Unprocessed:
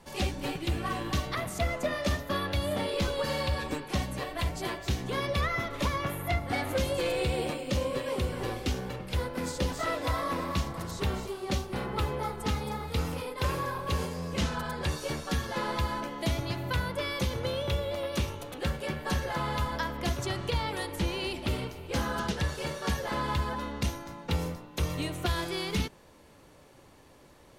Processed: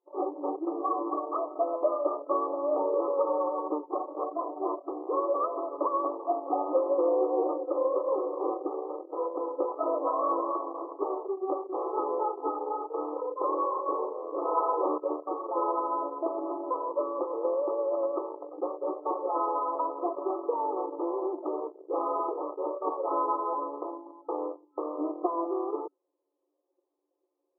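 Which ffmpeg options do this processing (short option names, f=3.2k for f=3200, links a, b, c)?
-filter_complex "[0:a]asettb=1/sr,asplit=3[a][b][c];[a]atrim=end=14.454[d];[b]atrim=start=14.45:end=14.98,asetpts=PTS-STARTPTS,afade=t=in:d=0.004:c=qsin,afade=t=out:st=0.526:d=0.004:c=qsin,acontrast=31[e];[c]atrim=start=14.976[f];[d][e]acrossfade=d=0.004:c1=hsin:c2=qsin[g];[g][f]acrossfade=d=0.004:c1=qsin:c2=hsin,anlmdn=1.58,afftfilt=real='re*between(b*sr/4096,290,1300)':imag='im*between(b*sr/4096,290,1300)':win_size=4096:overlap=0.75,volume=5.5dB"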